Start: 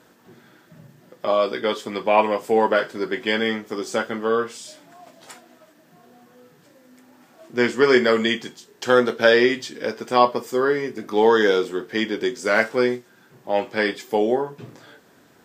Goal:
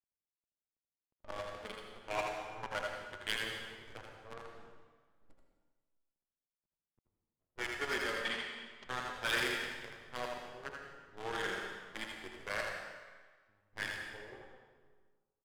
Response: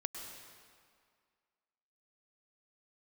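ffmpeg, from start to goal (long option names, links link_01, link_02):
-filter_complex "[0:a]aderivative,asplit=3[link_01][link_02][link_03];[link_01]afade=type=out:start_time=12.6:duration=0.02[link_04];[link_02]acompressor=threshold=-53dB:ratio=8,afade=type=in:start_time=12.6:duration=0.02,afade=type=out:start_time=13.71:duration=0.02[link_05];[link_03]afade=type=in:start_time=13.71:duration=0.02[link_06];[link_04][link_05][link_06]amix=inputs=3:normalize=0,aeval=exprs='0.0562*(cos(1*acos(clip(val(0)/0.0562,-1,1)))-cos(1*PI/2))+0.00794*(cos(3*acos(clip(val(0)/0.0562,-1,1)))-cos(3*PI/2))+0.000562*(cos(6*acos(clip(val(0)/0.0562,-1,1)))-cos(6*PI/2))':channel_layout=same,flanger=delay=0.7:depth=8:regen=-7:speed=0.15:shape=sinusoidal,acrusher=bits=7:dc=4:mix=0:aa=0.000001,adynamicsmooth=sensitivity=6.5:basefreq=520,asettb=1/sr,asplit=3[link_07][link_08][link_09];[link_07]atrim=end=8.214[link_10];[link_08]atrim=start=8.21:end=8.87,asetpts=PTS-STARTPTS,afade=type=in:duration=0.004:curve=qsin,afade=type=out:start_time=0.656:duration=0.004:curve=qsin,highpass=110,lowpass=5900[link_11];[link_09]atrim=start=8.866[link_12];[link_10][link_11]acrossfade=duration=0.004:curve1=hsin:curve2=qsin[link_13];[link_13][link_12]acrossfade=duration=0.004:curve1=qsin:curve2=hsin,aecho=1:1:81:0.562[link_14];[1:a]atrim=start_sample=2205,asetrate=61740,aresample=44100[link_15];[link_14][link_15]afir=irnorm=-1:irlink=0,volume=7.5dB"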